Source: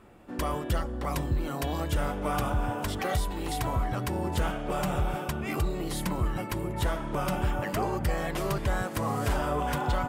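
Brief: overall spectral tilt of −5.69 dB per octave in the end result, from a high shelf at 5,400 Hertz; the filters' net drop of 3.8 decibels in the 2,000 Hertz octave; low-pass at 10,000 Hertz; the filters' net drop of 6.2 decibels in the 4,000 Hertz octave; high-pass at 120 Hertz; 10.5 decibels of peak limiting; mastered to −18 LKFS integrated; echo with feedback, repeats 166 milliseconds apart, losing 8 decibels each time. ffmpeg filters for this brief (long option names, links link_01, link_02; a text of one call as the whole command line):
ffmpeg -i in.wav -af "highpass=120,lowpass=10000,equalizer=frequency=2000:width_type=o:gain=-4,equalizer=frequency=4000:width_type=o:gain=-8.5,highshelf=frequency=5400:gain=4,alimiter=level_in=5dB:limit=-24dB:level=0:latency=1,volume=-5dB,aecho=1:1:166|332|498|664|830:0.398|0.159|0.0637|0.0255|0.0102,volume=19dB" out.wav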